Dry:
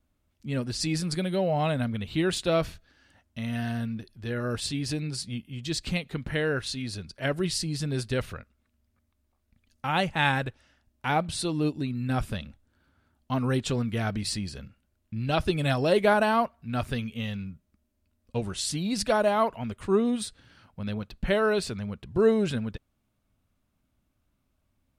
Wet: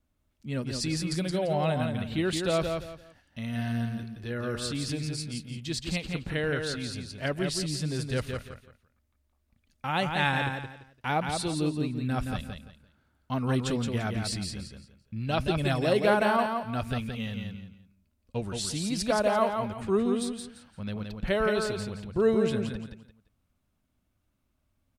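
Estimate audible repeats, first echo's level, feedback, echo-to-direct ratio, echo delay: 3, -5.0 dB, 26%, -4.5 dB, 171 ms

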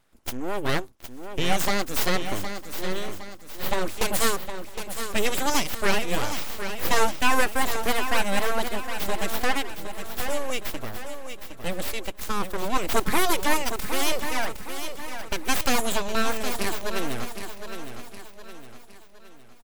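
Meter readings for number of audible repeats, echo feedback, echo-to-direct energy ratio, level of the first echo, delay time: 6, no regular repeats, -8.0 dB, -9.0 dB, 763 ms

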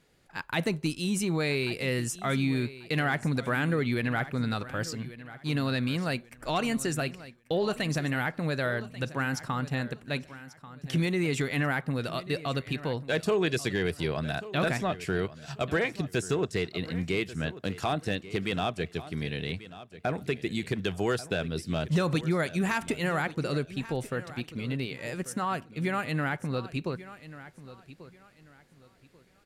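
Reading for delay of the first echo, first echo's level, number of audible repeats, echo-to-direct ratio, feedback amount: 1139 ms, -16.0 dB, 2, -15.5 dB, 27%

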